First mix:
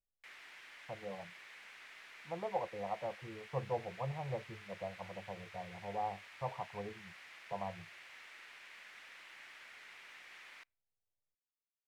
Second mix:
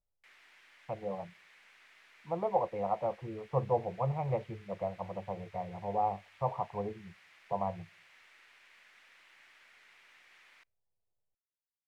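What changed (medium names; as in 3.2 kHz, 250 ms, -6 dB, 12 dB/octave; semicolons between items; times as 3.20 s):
speech +7.5 dB; background -6.0 dB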